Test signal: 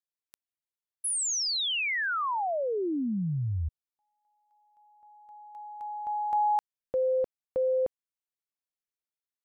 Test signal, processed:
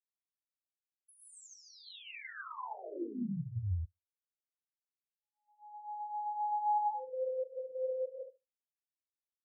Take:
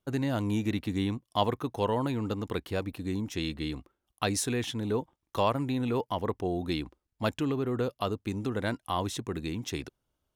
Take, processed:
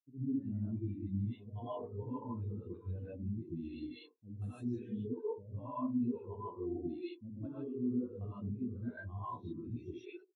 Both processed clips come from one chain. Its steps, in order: three bands offset in time lows, highs, mids 40/190 ms, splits 430/6000 Hz; expander -49 dBFS; on a send: feedback echo behind a band-pass 73 ms, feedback 38%, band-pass 500 Hz, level -7 dB; on the sum: gated-style reverb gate 180 ms rising, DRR -7 dB; reverse; compression 4:1, threshold -38 dBFS; reverse; high-pass 77 Hz 6 dB/octave; spectral contrast expander 2.5:1

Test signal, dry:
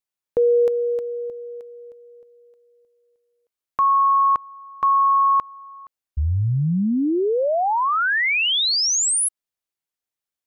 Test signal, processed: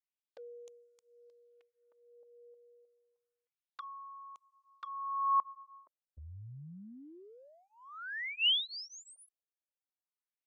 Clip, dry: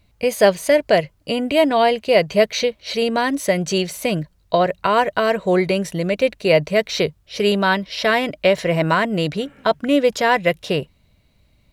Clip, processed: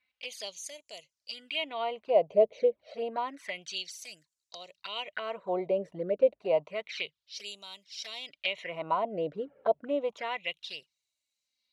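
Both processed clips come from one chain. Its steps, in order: touch-sensitive flanger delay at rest 4 ms, full sweep at -15 dBFS; LFO band-pass sine 0.29 Hz 510–7200 Hz; trim -3 dB

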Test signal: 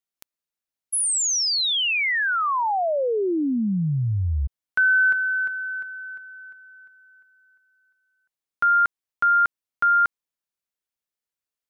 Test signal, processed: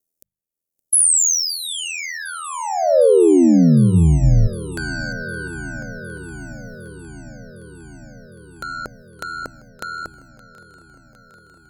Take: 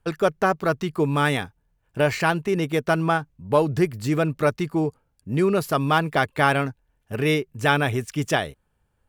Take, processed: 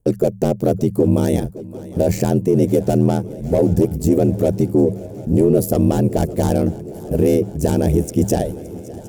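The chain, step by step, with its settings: gate -49 dBFS, range -27 dB; hum notches 50/100/150 Hz; in parallel at -4.5 dB: sine folder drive 12 dB, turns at -4 dBFS; on the sum: FFT filter 560 Hz 0 dB, 1.2 kHz -24 dB, 3.8 kHz -17 dB, 6.4 kHz -5 dB, 13 kHz 0 dB; upward compressor 1.5:1, threshold -19 dBFS; peak limiter -7 dBFS; ring modulator 41 Hz; dynamic bell 4.2 kHz, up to -5 dB, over -47 dBFS, Q 7.2; on a send: shuffle delay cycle 758 ms, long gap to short 3:1, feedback 72%, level -20 dB; on the sum: trim +1.5 dB

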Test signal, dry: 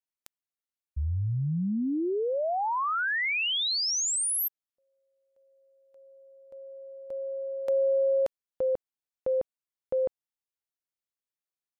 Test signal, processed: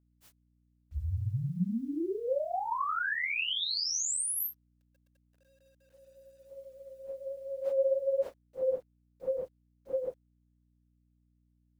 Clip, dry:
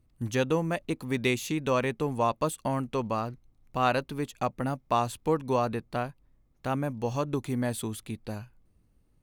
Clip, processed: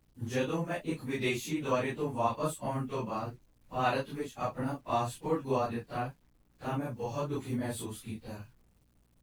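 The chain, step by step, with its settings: phase randomisation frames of 100 ms; bit crusher 11-bit; mains buzz 60 Hz, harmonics 5, -66 dBFS -5 dB/octave; trim -4.5 dB

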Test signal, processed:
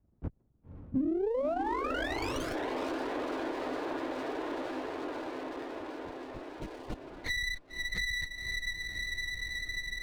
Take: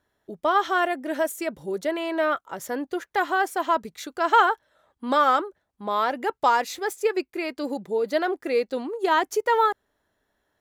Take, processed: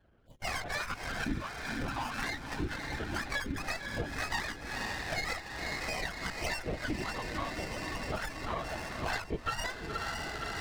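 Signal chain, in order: spectrum inverted on a logarithmic axis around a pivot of 1.6 kHz; LPC vocoder at 8 kHz whisper; echo that smears into a reverb 538 ms, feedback 71%, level -10 dB; compression 5:1, threshold -40 dBFS; loudest bins only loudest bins 64; sliding maximum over 9 samples; trim +8.5 dB

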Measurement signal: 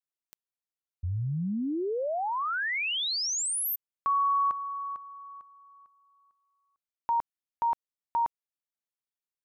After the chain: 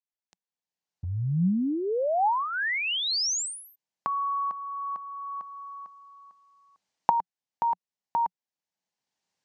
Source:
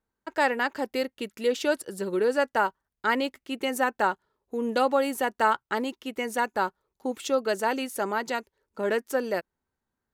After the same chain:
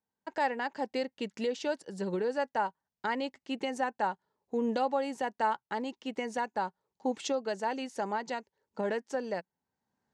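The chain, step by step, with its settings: recorder AGC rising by 16 dB/s, up to +24 dB; cabinet simulation 110–7000 Hz, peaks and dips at 180 Hz +5 dB, 360 Hz -4 dB, 830 Hz +5 dB, 1.3 kHz -7 dB, 2.4 kHz -3 dB, 3.5 kHz -3 dB; trim -7.5 dB

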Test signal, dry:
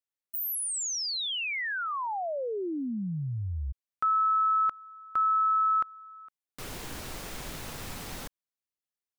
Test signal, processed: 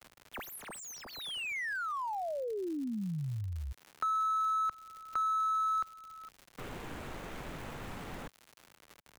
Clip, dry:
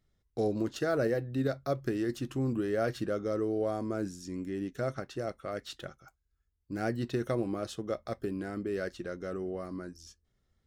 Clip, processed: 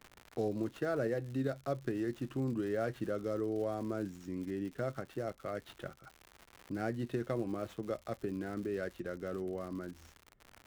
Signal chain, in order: median filter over 9 samples; crackle 140 per s -41 dBFS; three bands compressed up and down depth 40%; trim -4 dB

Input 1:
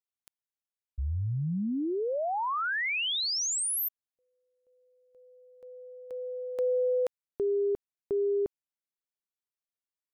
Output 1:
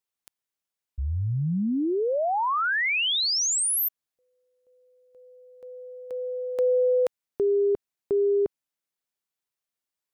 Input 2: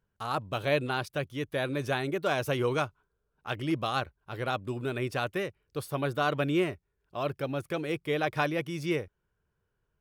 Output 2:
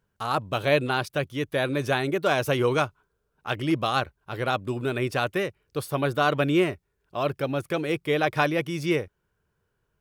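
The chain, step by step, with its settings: bass shelf 65 Hz -5.5 dB; trim +5.5 dB

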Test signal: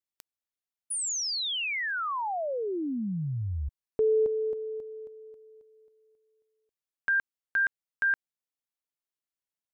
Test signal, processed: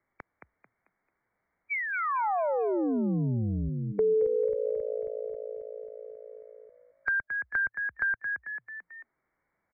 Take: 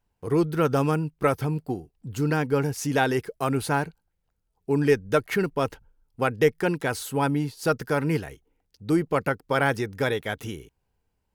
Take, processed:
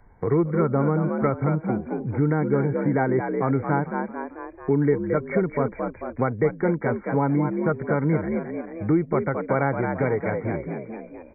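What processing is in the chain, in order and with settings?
harmonic-percussive split harmonic +5 dB; dynamic bell 1.7 kHz, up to -7 dB, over -41 dBFS, Q 3.5; brick-wall FIR low-pass 2.3 kHz; frequency-shifting echo 221 ms, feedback 34%, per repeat +56 Hz, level -7.5 dB; three bands compressed up and down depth 70%; trim -2 dB

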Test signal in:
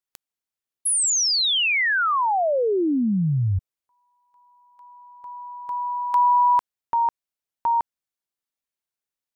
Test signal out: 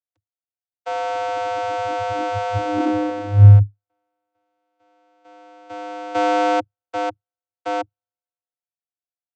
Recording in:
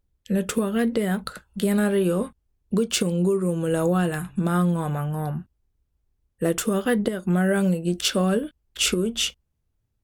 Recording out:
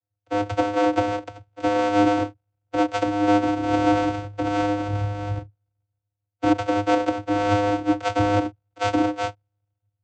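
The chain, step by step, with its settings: sorted samples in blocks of 64 samples; vocoder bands 16, square 102 Hz; three bands expanded up and down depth 40%; trim +1.5 dB

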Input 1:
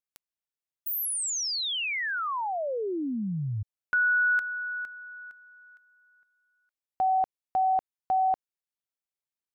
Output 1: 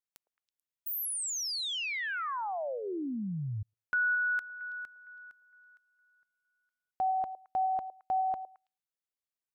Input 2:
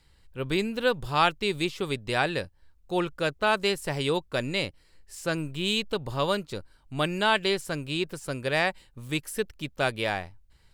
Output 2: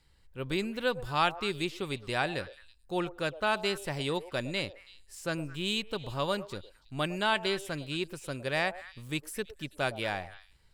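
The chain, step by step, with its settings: dynamic bell 450 Hz, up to -4 dB, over -43 dBFS, Q 7; on a send: repeats whose band climbs or falls 109 ms, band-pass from 580 Hz, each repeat 1.4 oct, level -11.5 dB; on the sum: trim -4.5 dB

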